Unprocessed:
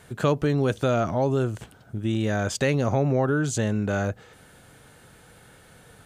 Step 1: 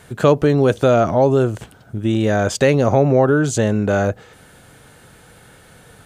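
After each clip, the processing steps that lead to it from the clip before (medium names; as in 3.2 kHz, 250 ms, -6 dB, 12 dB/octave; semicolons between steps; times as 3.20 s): dynamic bell 530 Hz, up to +5 dB, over -36 dBFS, Q 0.79; trim +5.5 dB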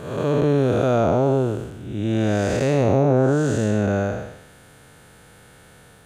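spectral blur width 322 ms; trim -1 dB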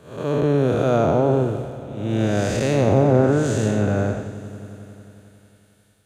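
echo with a slow build-up 90 ms, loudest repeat 5, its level -18 dB; three bands expanded up and down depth 70%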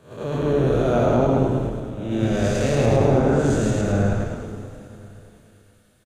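backward echo that repeats 106 ms, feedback 47%, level -0.5 dB; flange 0.83 Hz, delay 7.9 ms, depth 1.1 ms, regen -62%; on a send: frequency-shifting echo 88 ms, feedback 64%, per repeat -86 Hz, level -10.5 dB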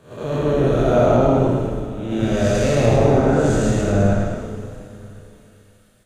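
reverberation RT60 0.30 s, pre-delay 5 ms, DRR 3.5 dB; trim +1.5 dB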